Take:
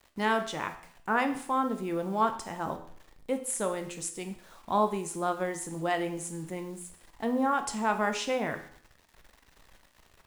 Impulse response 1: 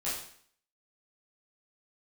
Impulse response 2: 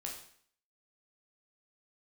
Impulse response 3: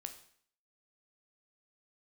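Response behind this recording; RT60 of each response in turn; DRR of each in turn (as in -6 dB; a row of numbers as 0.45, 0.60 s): 3; 0.55, 0.55, 0.55 s; -10.0, -1.0, 6.5 dB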